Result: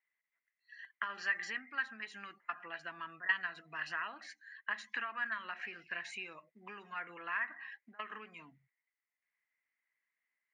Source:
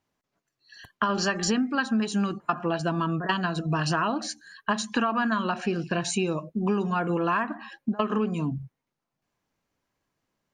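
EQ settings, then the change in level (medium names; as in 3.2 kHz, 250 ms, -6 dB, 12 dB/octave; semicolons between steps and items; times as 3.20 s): band-pass filter 2 kHz, Q 14; +9.0 dB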